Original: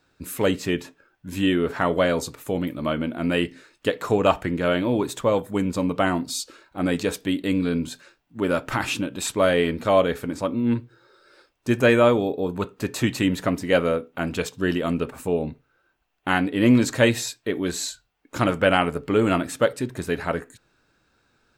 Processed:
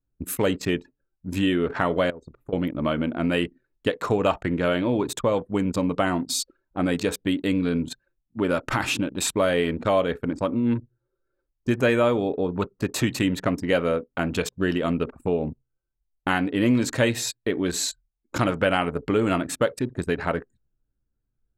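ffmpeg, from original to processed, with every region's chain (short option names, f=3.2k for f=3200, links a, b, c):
-filter_complex "[0:a]asettb=1/sr,asplit=3[a][b][c];[a]atrim=end=2.104[d];[b]atrim=start=2.1:end=2.53,asetpts=PTS-STARTPTS,afade=t=in:d=0.004:c=qsin,afade=t=out:st=0.426:d=0.004:c=qsin,acompressor=threshold=-35dB:ratio=6:attack=3.2:release=140:knee=1:detection=peak,highshelf=f=3.7k:g=-4.5[e];[c]atrim=start=2.526[f];[d][e]acrossfade=d=0.004:c1=hsin:c2=qsin[g];[g][f]acrossfade=d=0.004:c1=qsin:c2=hsin,anlmdn=6.31,acompressor=threshold=-28dB:ratio=2,volume=4.5dB"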